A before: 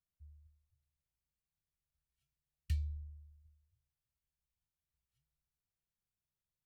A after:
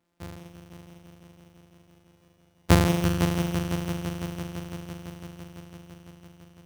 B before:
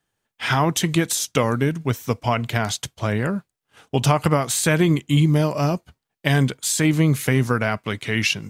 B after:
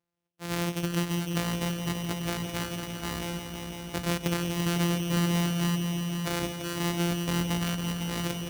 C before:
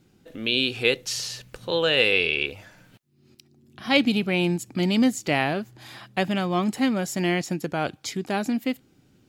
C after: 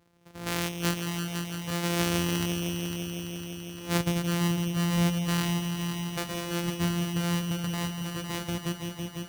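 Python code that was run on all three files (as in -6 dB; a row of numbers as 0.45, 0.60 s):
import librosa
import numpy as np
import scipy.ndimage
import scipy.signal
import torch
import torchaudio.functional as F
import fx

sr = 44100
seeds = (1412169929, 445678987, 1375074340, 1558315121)

p1 = np.r_[np.sort(x[:len(x) // 256 * 256].reshape(-1, 256), axis=1).ravel(), x[len(x) // 256 * 256:]]
p2 = fx.highpass(p1, sr, hz=100.0, slope=6)
p3 = fx.dynamic_eq(p2, sr, hz=750.0, q=0.74, threshold_db=-34.0, ratio=4.0, max_db=-4)
p4 = p3 + fx.echo_heads(p3, sr, ms=168, heads='all three', feedback_pct=72, wet_db=-11.0, dry=0)
y = p4 * 10.0 ** (-30 / 20.0) / np.sqrt(np.mean(np.square(p4)))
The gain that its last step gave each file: +18.5, -9.5, -5.5 dB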